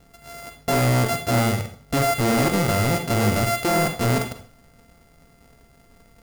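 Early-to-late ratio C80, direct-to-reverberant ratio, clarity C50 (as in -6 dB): 13.0 dB, 6.0 dB, 8.5 dB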